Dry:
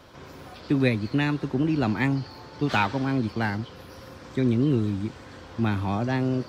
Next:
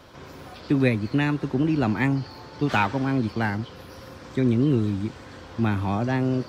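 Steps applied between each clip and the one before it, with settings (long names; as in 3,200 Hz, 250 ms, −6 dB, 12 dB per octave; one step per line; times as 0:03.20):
dynamic equaliser 4,100 Hz, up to −5 dB, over −46 dBFS, Q 1.8
level +1.5 dB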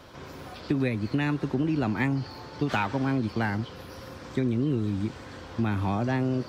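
downward compressor, threshold −22 dBFS, peak gain reduction 7.5 dB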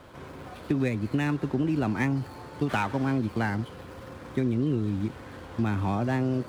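running median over 9 samples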